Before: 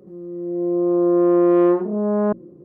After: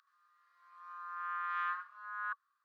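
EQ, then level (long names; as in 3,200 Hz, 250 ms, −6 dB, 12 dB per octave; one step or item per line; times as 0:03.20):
Chebyshev high-pass with heavy ripple 1,100 Hz, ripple 9 dB
high-shelf EQ 2,000 Hz −11.5 dB
+11.0 dB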